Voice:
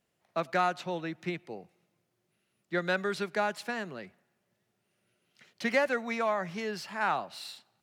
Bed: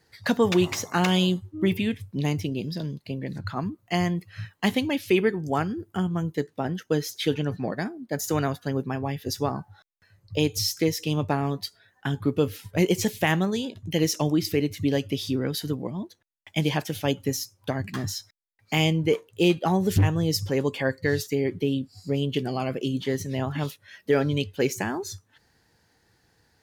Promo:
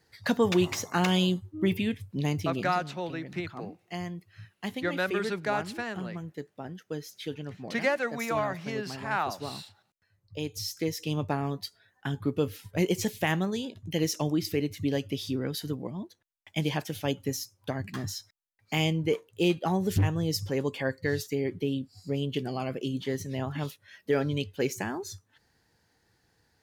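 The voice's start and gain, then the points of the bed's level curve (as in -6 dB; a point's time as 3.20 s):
2.10 s, 0.0 dB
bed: 2.61 s -3 dB
2.85 s -11.5 dB
10.36 s -11.5 dB
11.10 s -4.5 dB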